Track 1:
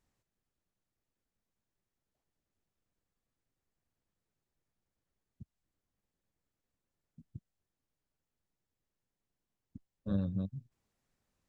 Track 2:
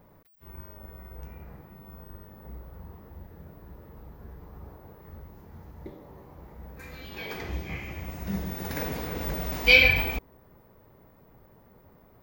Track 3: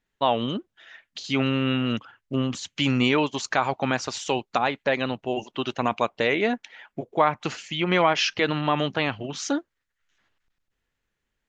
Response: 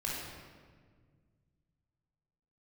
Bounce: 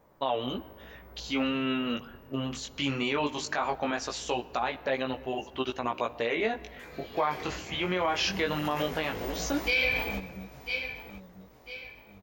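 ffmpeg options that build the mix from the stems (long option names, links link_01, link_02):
-filter_complex "[0:a]volume=-1dB,asplit=2[link_01][link_02];[link_02]volume=-7.5dB[link_03];[1:a]lowpass=frequency=2500:poles=1,volume=1dB,asplit=3[link_04][link_05][link_06];[link_05]volume=-18dB[link_07];[link_06]volume=-13dB[link_08];[2:a]lowpass=frequency=2600:poles=1,volume=0dB,asplit=2[link_09][link_10];[link_10]volume=-21.5dB[link_11];[3:a]atrim=start_sample=2205[link_12];[link_07][link_11]amix=inputs=2:normalize=0[link_13];[link_13][link_12]afir=irnorm=-1:irlink=0[link_14];[link_03][link_08]amix=inputs=2:normalize=0,aecho=0:1:997|1994|2991|3988|4985:1|0.36|0.13|0.0467|0.0168[link_15];[link_01][link_04][link_09][link_14][link_15]amix=inputs=5:normalize=0,bass=frequency=250:gain=-8,treble=frequency=4000:gain=8,flanger=delay=15:depth=6.8:speed=0.19,alimiter=limit=-17.5dB:level=0:latency=1:release=70"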